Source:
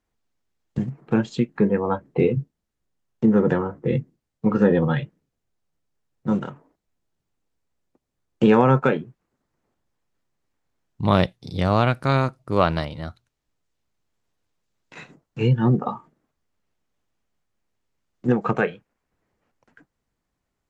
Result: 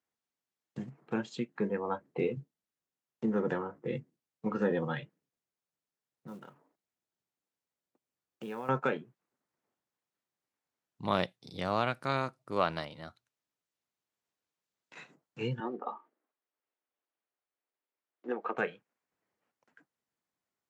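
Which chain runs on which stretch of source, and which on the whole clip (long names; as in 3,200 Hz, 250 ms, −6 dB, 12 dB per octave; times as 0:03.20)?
0:06.27–0:08.69: downward compressor 1.5 to 1, threshold −48 dBFS + floating-point word with a short mantissa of 4 bits
0:15.60–0:18.58: high-pass filter 290 Hz 24 dB per octave + high-frequency loss of the air 230 metres
whole clip: Bessel high-pass filter 230 Hz, order 2; parametric band 300 Hz −3 dB 2.5 octaves; level −8 dB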